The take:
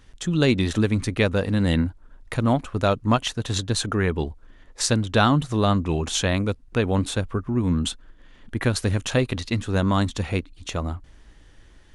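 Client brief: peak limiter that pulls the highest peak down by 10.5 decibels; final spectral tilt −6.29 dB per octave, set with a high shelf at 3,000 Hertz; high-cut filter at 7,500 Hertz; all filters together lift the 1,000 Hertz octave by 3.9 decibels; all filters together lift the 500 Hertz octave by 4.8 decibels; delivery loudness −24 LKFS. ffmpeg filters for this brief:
ffmpeg -i in.wav -af "lowpass=7500,equalizer=frequency=500:width_type=o:gain=5,equalizer=frequency=1000:width_type=o:gain=4.5,highshelf=frequency=3000:gain=-7.5,volume=1dB,alimiter=limit=-12dB:level=0:latency=1" out.wav

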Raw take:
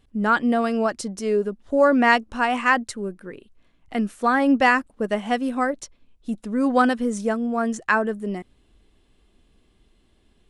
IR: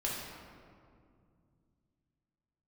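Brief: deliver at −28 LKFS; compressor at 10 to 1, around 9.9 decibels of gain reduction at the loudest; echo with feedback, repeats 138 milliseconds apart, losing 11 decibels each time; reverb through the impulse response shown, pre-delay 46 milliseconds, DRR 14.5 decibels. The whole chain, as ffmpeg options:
-filter_complex "[0:a]acompressor=threshold=-22dB:ratio=10,aecho=1:1:138|276|414:0.282|0.0789|0.0221,asplit=2[link_01][link_02];[1:a]atrim=start_sample=2205,adelay=46[link_03];[link_02][link_03]afir=irnorm=-1:irlink=0,volume=-19dB[link_04];[link_01][link_04]amix=inputs=2:normalize=0,volume=-0.5dB"

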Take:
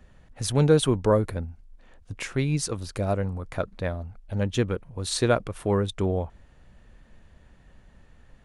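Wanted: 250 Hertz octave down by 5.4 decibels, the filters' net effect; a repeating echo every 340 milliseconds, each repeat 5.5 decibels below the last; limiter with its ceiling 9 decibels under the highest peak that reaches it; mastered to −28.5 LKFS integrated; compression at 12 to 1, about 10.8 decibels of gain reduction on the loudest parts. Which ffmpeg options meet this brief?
ffmpeg -i in.wav -af "equalizer=frequency=250:width_type=o:gain=-8.5,acompressor=threshold=-27dB:ratio=12,alimiter=level_in=3dB:limit=-24dB:level=0:latency=1,volume=-3dB,aecho=1:1:340|680|1020|1360|1700|2040|2380:0.531|0.281|0.149|0.079|0.0419|0.0222|0.0118,volume=8dB" out.wav

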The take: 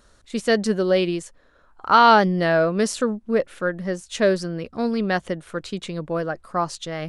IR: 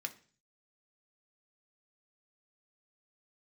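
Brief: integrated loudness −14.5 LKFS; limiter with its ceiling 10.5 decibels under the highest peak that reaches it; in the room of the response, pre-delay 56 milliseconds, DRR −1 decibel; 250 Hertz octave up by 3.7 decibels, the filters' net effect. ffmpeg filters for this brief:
-filter_complex "[0:a]equalizer=frequency=250:width_type=o:gain=5,alimiter=limit=-12.5dB:level=0:latency=1,asplit=2[link_01][link_02];[1:a]atrim=start_sample=2205,adelay=56[link_03];[link_02][link_03]afir=irnorm=-1:irlink=0,volume=1.5dB[link_04];[link_01][link_04]amix=inputs=2:normalize=0,volume=6dB"

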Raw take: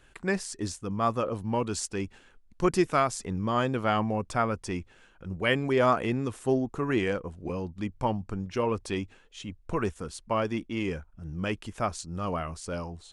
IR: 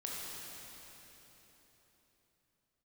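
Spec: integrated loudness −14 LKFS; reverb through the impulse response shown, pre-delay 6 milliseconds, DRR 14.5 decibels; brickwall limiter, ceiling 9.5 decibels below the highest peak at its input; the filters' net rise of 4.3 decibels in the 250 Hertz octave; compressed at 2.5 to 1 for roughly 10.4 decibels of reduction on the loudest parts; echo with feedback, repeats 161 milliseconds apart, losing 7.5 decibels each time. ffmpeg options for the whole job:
-filter_complex "[0:a]equalizer=frequency=250:width_type=o:gain=5.5,acompressor=threshold=-33dB:ratio=2.5,alimiter=level_in=4.5dB:limit=-24dB:level=0:latency=1,volume=-4.5dB,aecho=1:1:161|322|483|644|805:0.422|0.177|0.0744|0.0312|0.0131,asplit=2[link_01][link_02];[1:a]atrim=start_sample=2205,adelay=6[link_03];[link_02][link_03]afir=irnorm=-1:irlink=0,volume=-16dB[link_04];[link_01][link_04]amix=inputs=2:normalize=0,volume=23.5dB"

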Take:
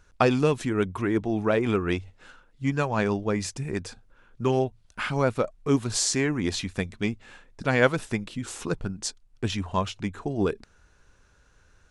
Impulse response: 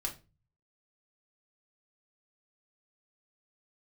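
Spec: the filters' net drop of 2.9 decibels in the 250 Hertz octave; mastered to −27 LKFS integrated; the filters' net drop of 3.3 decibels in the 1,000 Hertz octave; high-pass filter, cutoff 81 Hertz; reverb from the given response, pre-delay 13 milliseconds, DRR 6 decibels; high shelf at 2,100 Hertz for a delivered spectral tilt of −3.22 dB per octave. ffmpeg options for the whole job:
-filter_complex "[0:a]highpass=81,equalizer=frequency=250:width_type=o:gain=-3.5,equalizer=frequency=1000:width_type=o:gain=-6.5,highshelf=frequency=2100:gain=8,asplit=2[link_01][link_02];[1:a]atrim=start_sample=2205,adelay=13[link_03];[link_02][link_03]afir=irnorm=-1:irlink=0,volume=-7.5dB[link_04];[link_01][link_04]amix=inputs=2:normalize=0,volume=-1dB"

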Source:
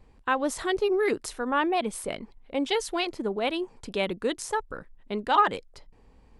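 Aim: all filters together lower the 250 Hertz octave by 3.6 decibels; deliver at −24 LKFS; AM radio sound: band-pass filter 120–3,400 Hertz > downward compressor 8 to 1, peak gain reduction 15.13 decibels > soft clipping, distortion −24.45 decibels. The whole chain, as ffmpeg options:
ffmpeg -i in.wav -af "highpass=120,lowpass=3400,equalizer=frequency=250:width_type=o:gain=-5,acompressor=threshold=-31dB:ratio=8,asoftclip=threshold=-23dB,volume=13.5dB" out.wav

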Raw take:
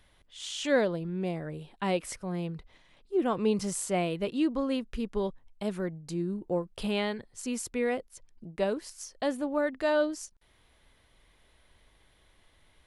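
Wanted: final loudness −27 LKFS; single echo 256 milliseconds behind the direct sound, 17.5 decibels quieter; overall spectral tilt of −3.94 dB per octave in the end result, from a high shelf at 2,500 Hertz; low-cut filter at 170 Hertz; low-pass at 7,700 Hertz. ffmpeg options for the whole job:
ffmpeg -i in.wav -af "highpass=170,lowpass=7700,highshelf=frequency=2500:gain=6,aecho=1:1:256:0.133,volume=4.5dB" out.wav

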